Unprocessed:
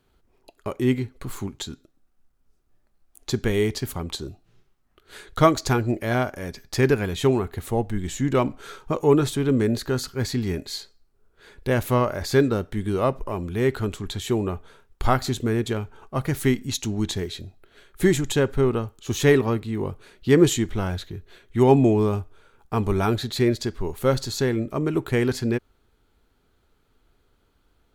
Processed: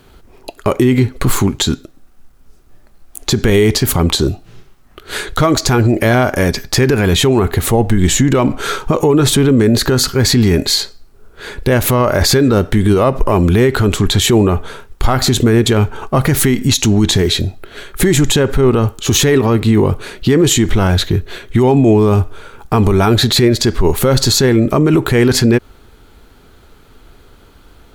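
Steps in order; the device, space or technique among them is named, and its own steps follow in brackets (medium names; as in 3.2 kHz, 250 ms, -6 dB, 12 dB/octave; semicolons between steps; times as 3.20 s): loud club master (compression 2.5:1, threshold -23 dBFS, peak gain reduction 9 dB; hard clipper -13.5 dBFS, distortion -39 dB; loudness maximiser +23 dB); trim -2 dB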